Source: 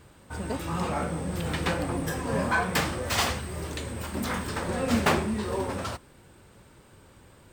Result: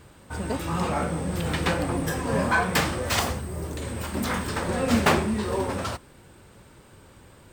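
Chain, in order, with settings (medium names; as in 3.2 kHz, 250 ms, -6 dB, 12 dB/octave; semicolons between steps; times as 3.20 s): 3.19–3.82 s: peaking EQ 3 kHz -9 dB 2.7 oct; trim +3 dB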